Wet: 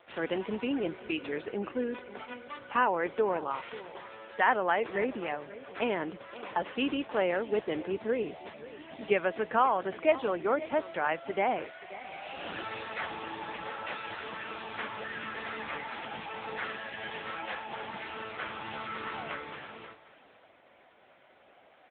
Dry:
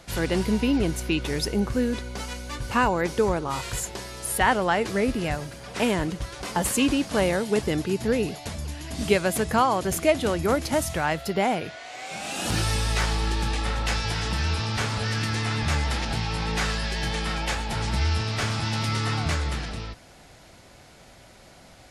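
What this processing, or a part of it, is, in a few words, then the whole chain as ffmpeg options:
satellite phone: -af "highpass=360,lowpass=3300,aecho=1:1:532:0.158,volume=-3dB" -ar 8000 -c:a libopencore_amrnb -b:a 6700

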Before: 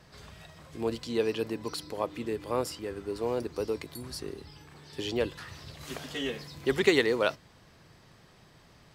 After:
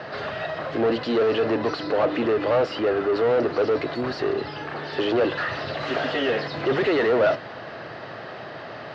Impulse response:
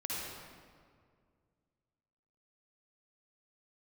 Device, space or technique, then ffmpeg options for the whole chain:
overdrive pedal into a guitar cabinet: -filter_complex "[0:a]asplit=2[link_01][link_02];[link_02]highpass=frequency=720:poles=1,volume=38dB,asoftclip=type=tanh:threshold=-9.5dB[link_03];[link_01][link_03]amix=inputs=2:normalize=0,lowpass=frequency=2700:poles=1,volume=-6dB,highpass=100,equalizer=frequency=110:width_type=q:width=4:gain=4,equalizer=frequency=180:width_type=q:width=4:gain=-5,equalizer=frequency=630:width_type=q:width=4:gain=6,equalizer=frequency=1000:width_type=q:width=4:gain=-6,equalizer=frequency=2300:width_type=q:width=4:gain=-8,equalizer=frequency=3400:width_type=q:width=4:gain=-7,lowpass=frequency=3700:width=0.5412,lowpass=frequency=3700:width=1.3066,volume=-3.5dB"

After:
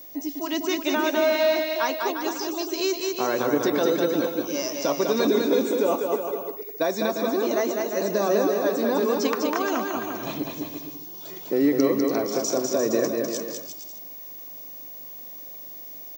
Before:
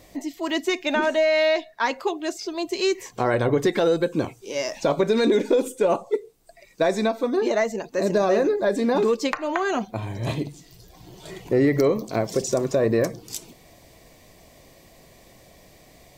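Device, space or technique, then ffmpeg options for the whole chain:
old television with a line whistle: -af "highpass=frequency=170:width=0.5412,highpass=frequency=170:width=1.3066,equalizer=frequency=290:width_type=q:width=4:gain=6,equalizer=frequency=1200:width_type=q:width=4:gain=3,equalizer=frequency=2000:width_type=q:width=4:gain=-5,equalizer=frequency=5800:width_type=q:width=4:gain=8,lowpass=frequency=7600:width=0.5412,lowpass=frequency=7600:width=1.3066,aeval=exprs='val(0)+0.0126*sin(2*PI*15625*n/s)':channel_layout=same,lowshelf=frequency=500:gain=-3.5,aecho=1:1:200|350|462.5|546.9|610.2:0.631|0.398|0.251|0.158|0.1,volume=-2.5dB"

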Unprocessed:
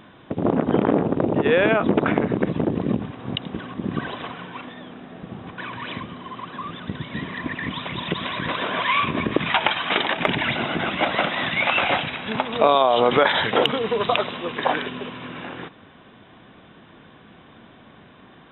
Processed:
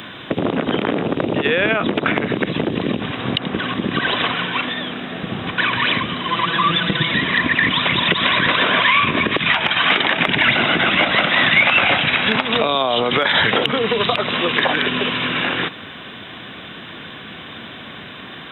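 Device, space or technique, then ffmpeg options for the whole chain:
mastering chain: -filter_complex "[0:a]highpass=56,equalizer=frequency=890:width_type=o:width=0.77:gain=-3.5,acrossover=split=270|2300[link_01][link_02][link_03];[link_01]acompressor=threshold=-32dB:ratio=4[link_04];[link_02]acompressor=threshold=-28dB:ratio=4[link_05];[link_03]acompressor=threshold=-42dB:ratio=4[link_06];[link_04][link_05][link_06]amix=inputs=3:normalize=0,acompressor=threshold=-28dB:ratio=2.5,tiltshelf=frequency=1500:gain=-6.5,alimiter=level_in=17.5dB:limit=-1dB:release=50:level=0:latency=1,asettb=1/sr,asplit=3[link_07][link_08][link_09];[link_07]atrim=end=6.284[link_10];[link_08]atrim=start=6.28:end=7.12,asetpts=PTS-STARTPTS,afade=type=in:duration=0.004:curve=qsin,afade=type=out:start_time=0.836:duration=0.004:curve=qsin,aecho=1:1:6:0.9,atrim=end_sample=37044[link_11];[link_09]atrim=start=7.116[link_12];[link_10][link_11]acrossfade=duration=0.004:curve1=hsin:curve2=qsin[link_13];[link_13][link_12]acrossfade=duration=0.004:curve1=qsin:curve2=hsin,volume=-1dB"

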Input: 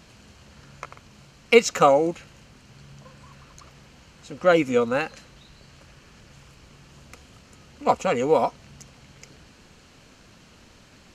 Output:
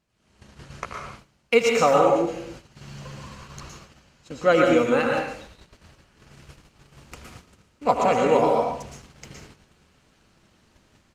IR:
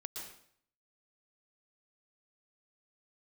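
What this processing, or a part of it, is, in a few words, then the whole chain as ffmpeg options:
speakerphone in a meeting room: -filter_complex "[1:a]atrim=start_sample=2205[link_01];[0:a][link_01]afir=irnorm=-1:irlink=0,asplit=2[link_02][link_03];[link_03]adelay=80,highpass=300,lowpass=3400,asoftclip=type=hard:threshold=-16dB,volume=-11dB[link_04];[link_02][link_04]amix=inputs=2:normalize=0,dynaudnorm=framelen=110:gausssize=5:maxgain=14dB,agate=range=-14dB:threshold=-36dB:ratio=16:detection=peak,volume=-4.5dB" -ar 48000 -c:a libopus -b:a 32k

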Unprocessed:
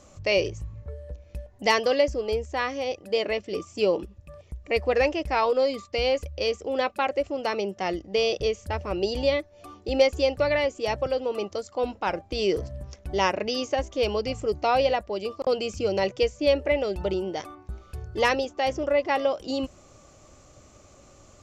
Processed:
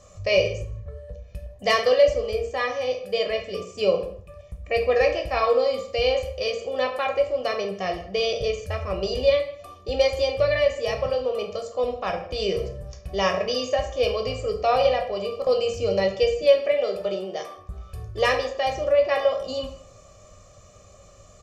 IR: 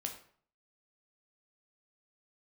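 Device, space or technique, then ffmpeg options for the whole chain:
microphone above a desk: -filter_complex "[0:a]asettb=1/sr,asplit=3[link_01][link_02][link_03];[link_01]atrim=end=16.424[link_04];[link_02]atrim=start=16.42:end=17.56,asetpts=PTS-STARTPTS,afade=type=in:duration=0.004:curve=qsin,afade=type=out:start_time=1.136:duration=0.004:curve=qsin,highpass=240[link_05];[link_03]atrim=start=17.556[link_06];[link_04][link_05]acrossfade=duration=0.004:curve1=hsin:curve2=qsin[link_07];[link_07][link_06]acrossfade=duration=0.004:curve1=qsin:curve2=hsin,aecho=1:1:1.7:0.76[link_08];[1:a]atrim=start_sample=2205[link_09];[link_08][link_09]afir=irnorm=-1:irlink=0,asplit=2[link_10][link_11];[link_11]adelay=157.4,volume=-22dB,highshelf=frequency=4000:gain=-3.54[link_12];[link_10][link_12]amix=inputs=2:normalize=0"

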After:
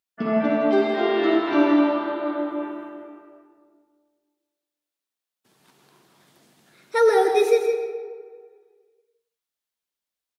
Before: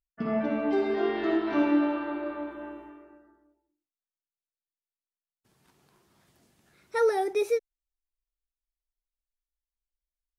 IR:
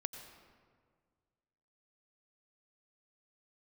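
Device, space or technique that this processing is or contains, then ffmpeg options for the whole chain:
PA in a hall: -filter_complex "[0:a]highpass=190,equalizer=frequency=3600:width_type=o:width=0.57:gain=3,aecho=1:1:162:0.335[link_01];[1:a]atrim=start_sample=2205[link_02];[link_01][link_02]afir=irnorm=-1:irlink=0,volume=8.5dB"

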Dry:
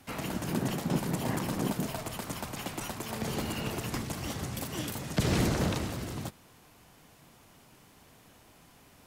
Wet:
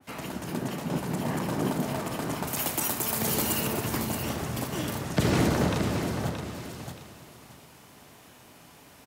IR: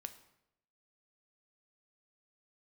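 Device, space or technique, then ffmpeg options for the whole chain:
far laptop microphone: -filter_complex "[0:a]asettb=1/sr,asplit=3[link_01][link_02][link_03];[link_01]atrim=end=2.474[link_04];[link_02]atrim=start=2.47:end=3.67,asetpts=PTS-STARTPTS,afade=type=in:duration=0.004:curve=qsin,afade=type=out:start_time=1.196:duration=0.004:curve=qsin,aemphasis=mode=production:type=75fm[link_05];[link_03]atrim=start=3.666[link_06];[link_04][link_05]acrossfade=duration=0.004:curve1=hsin:curve2=qsin[link_07];[link_07][link_06]acrossfade=duration=0.004:curve1=qsin:curve2=hsin,aecho=1:1:625|1250|1875:0.422|0.097|0.0223[link_08];[1:a]atrim=start_sample=2205[link_09];[link_08][link_09]afir=irnorm=-1:irlink=0,highpass=frequency=120:poles=1,dynaudnorm=framelen=410:gausssize=7:maxgain=5.5dB,adynamicequalizer=threshold=0.00447:dfrequency=2100:dqfactor=0.7:tfrequency=2100:tqfactor=0.7:attack=5:release=100:ratio=0.375:range=2.5:mode=cutabove:tftype=highshelf,volume=4dB"

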